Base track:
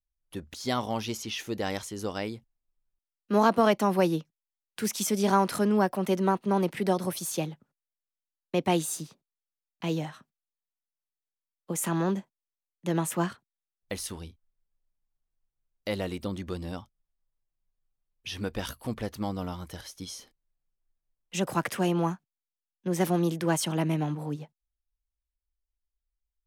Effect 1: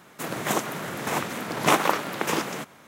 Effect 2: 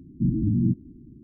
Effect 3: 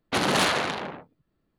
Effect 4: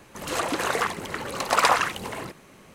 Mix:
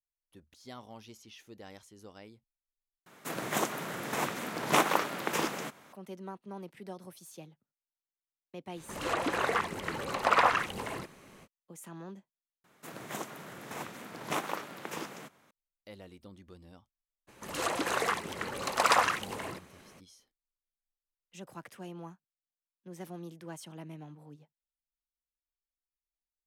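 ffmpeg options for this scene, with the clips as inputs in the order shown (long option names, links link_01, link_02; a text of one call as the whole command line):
ffmpeg -i bed.wav -i cue0.wav -i cue1.wav -i cue2.wav -i cue3.wav -filter_complex "[1:a]asplit=2[link_01][link_02];[4:a]asplit=2[link_03][link_04];[0:a]volume=-18dB[link_05];[link_01]lowshelf=frequency=85:gain=-7.5[link_06];[link_03]acrossover=split=3500[link_07][link_08];[link_08]acompressor=threshold=-41dB:ratio=4:attack=1:release=60[link_09];[link_07][link_09]amix=inputs=2:normalize=0[link_10];[link_04]lowshelf=frequency=83:gain=-6.5[link_11];[link_05]asplit=3[link_12][link_13][link_14];[link_12]atrim=end=3.064[link_15];[link_06]atrim=end=2.87,asetpts=PTS-STARTPTS,volume=-5dB[link_16];[link_13]atrim=start=5.926:end=12.644[link_17];[link_02]atrim=end=2.87,asetpts=PTS-STARTPTS,volume=-13.5dB[link_18];[link_14]atrim=start=15.506[link_19];[link_10]atrim=end=2.74,asetpts=PTS-STARTPTS,volume=-4dB,afade=type=in:duration=0.05,afade=type=out:start_time=2.69:duration=0.05,adelay=385434S[link_20];[link_11]atrim=end=2.74,asetpts=PTS-STARTPTS,volume=-5dB,afade=type=in:duration=0.02,afade=type=out:start_time=2.72:duration=0.02,adelay=17270[link_21];[link_15][link_16]acrossfade=duration=0.004:curve1=hsin:curve2=hsin[link_22];[link_22][link_17]acrossfade=duration=0.004:curve1=hsin:curve2=hsin[link_23];[link_23][link_18]acrossfade=duration=0.004:curve1=hsin:curve2=hsin[link_24];[link_24][link_19]acrossfade=duration=0.004:curve1=hsin:curve2=hsin[link_25];[link_25][link_20][link_21]amix=inputs=3:normalize=0" out.wav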